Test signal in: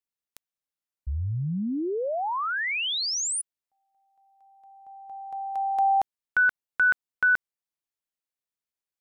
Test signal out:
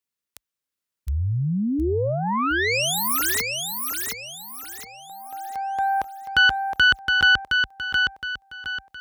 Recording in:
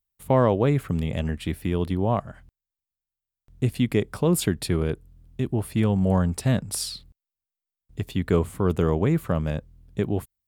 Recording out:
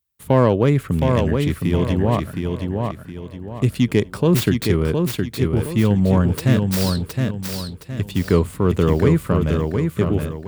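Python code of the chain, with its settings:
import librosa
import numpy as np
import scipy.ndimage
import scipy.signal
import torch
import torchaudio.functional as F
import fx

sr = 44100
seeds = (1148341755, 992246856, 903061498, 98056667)

p1 = fx.tracing_dist(x, sr, depth_ms=0.21)
p2 = scipy.signal.sosfilt(scipy.signal.butter(4, 45.0, 'highpass', fs=sr, output='sos'), p1)
p3 = fx.peak_eq(p2, sr, hz=740.0, db=-6.0, octaves=0.47)
p4 = p3 + fx.echo_feedback(p3, sr, ms=716, feedback_pct=36, wet_db=-4.5, dry=0)
y = F.gain(torch.from_numpy(p4), 5.0).numpy()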